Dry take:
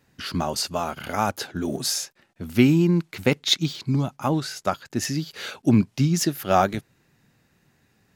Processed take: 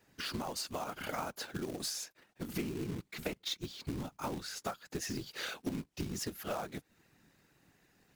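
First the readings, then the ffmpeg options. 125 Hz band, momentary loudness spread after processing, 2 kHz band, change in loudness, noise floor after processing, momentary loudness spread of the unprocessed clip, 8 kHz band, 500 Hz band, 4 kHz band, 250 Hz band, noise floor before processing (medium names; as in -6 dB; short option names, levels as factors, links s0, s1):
-20.0 dB, 4 LU, -12.0 dB, -16.0 dB, -75 dBFS, 9 LU, -12.5 dB, -15.0 dB, -13.5 dB, -18.5 dB, -66 dBFS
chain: -af "highpass=150,afftfilt=real='hypot(re,im)*cos(2*PI*random(0))':imag='hypot(re,im)*sin(2*PI*random(1))':win_size=512:overlap=0.75,acompressor=threshold=0.0126:ratio=10,acrusher=bits=3:mode=log:mix=0:aa=0.000001,volume=1.33"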